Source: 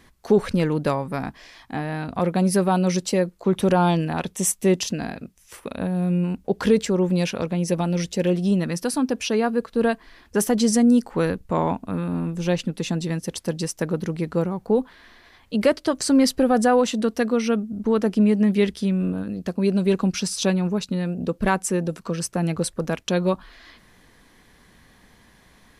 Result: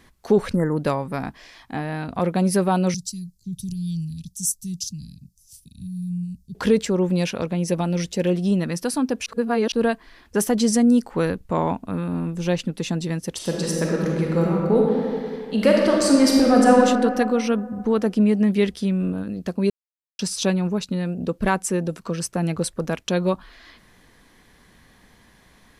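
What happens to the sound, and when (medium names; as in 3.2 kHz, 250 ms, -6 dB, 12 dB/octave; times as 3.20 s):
0.55–0.77 s: spectral selection erased 2.1–6.8 kHz
2.94–6.55 s: elliptic band-stop 150–5000 Hz, stop band 70 dB
9.26–9.72 s: reverse
13.32–16.73 s: reverb throw, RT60 2.3 s, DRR -2 dB
19.70–20.19 s: mute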